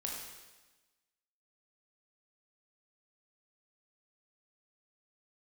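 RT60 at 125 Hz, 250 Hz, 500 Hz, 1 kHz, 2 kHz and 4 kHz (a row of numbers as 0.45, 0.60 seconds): 1.2, 1.3, 1.2, 1.2, 1.2, 1.2 seconds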